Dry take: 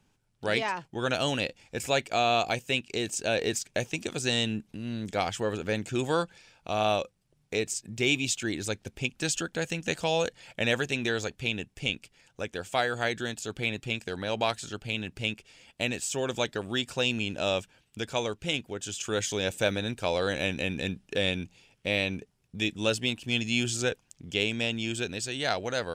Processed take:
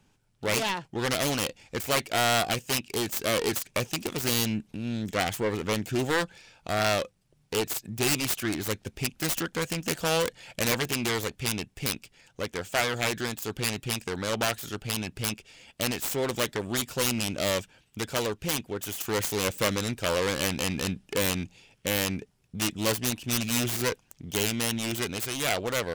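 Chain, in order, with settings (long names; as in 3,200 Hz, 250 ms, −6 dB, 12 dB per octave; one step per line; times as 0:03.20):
phase distortion by the signal itself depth 0.52 ms
soft clipping −20 dBFS, distortion −15 dB
level +3.5 dB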